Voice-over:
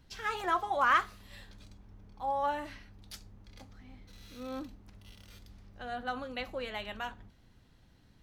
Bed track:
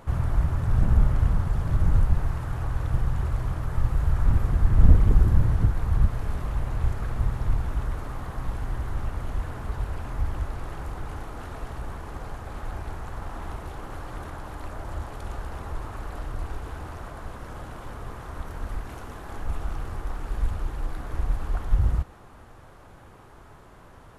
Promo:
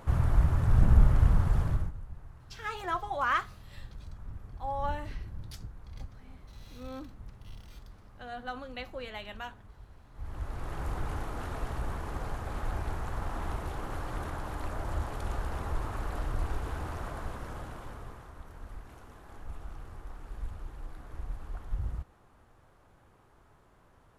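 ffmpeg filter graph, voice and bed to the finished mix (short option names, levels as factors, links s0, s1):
-filter_complex "[0:a]adelay=2400,volume=0.75[s0];[1:a]volume=11.9,afade=t=out:st=1.6:d=0.32:silence=0.0841395,afade=t=in:st=10.13:d=0.79:silence=0.0749894,afade=t=out:st=17.15:d=1.19:silence=0.237137[s1];[s0][s1]amix=inputs=2:normalize=0"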